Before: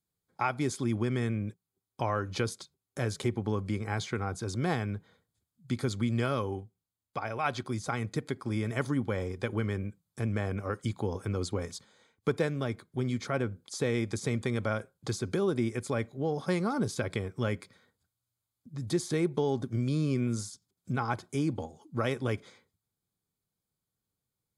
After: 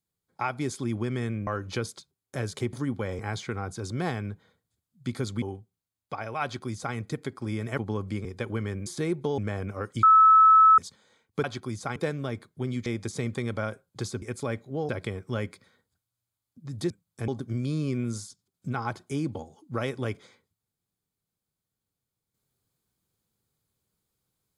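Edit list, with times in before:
1.47–2.1 cut
3.36–3.83 swap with 8.82–9.28
6.06–6.46 cut
7.47–7.99 copy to 12.33
9.89–10.27 swap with 18.99–19.51
10.92–11.67 bleep 1300 Hz -12.5 dBFS
13.23–13.94 cut
15.3–15.69 cut
16.36–16.98 cut

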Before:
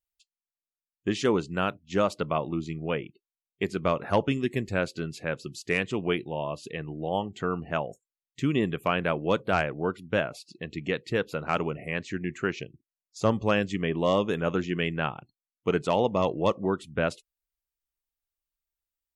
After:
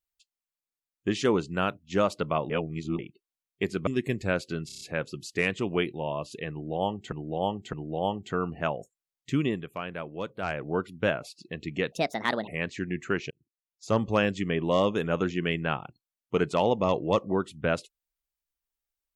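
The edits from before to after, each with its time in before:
2.5–2.99 reverse
3.87–4.34 cut
5.13 stutter 0.03 s, 6 plays
6.83–7.44 loop, 3 plays
8.51–9.76 dip -9.5 dB, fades 0.34 s quadratic
11.02–11.81 speed 142%
12.64–13.37 fade in

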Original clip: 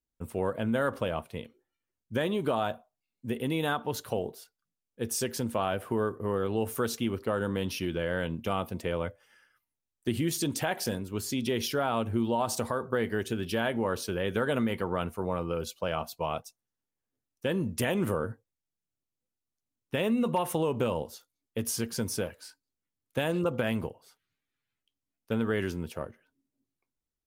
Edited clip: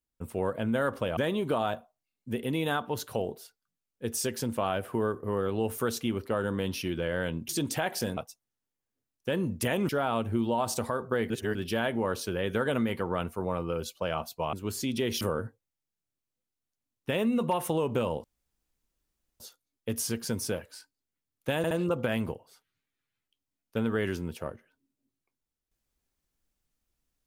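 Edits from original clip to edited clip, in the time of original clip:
1.17–2.14 cut
8.46–10.34 cut
11.02–11.7 swap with 16.34–18.06
13.11–13.36 reverse
21.09 insert room tone 1.16 s
23.26 stutter 0.07 s, 3 plays

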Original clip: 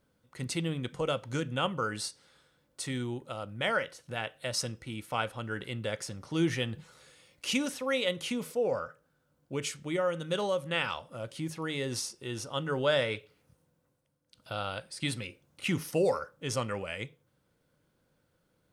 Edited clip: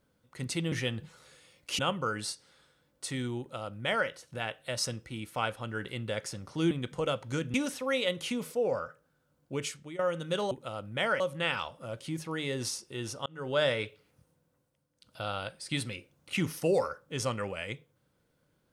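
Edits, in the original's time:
0.72–1.55 swap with 6.47–7.54
3.15–3.84 copy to 10.51
9.61–9.99 fade out, to -14.5 dB
12.57–12.93 fade in

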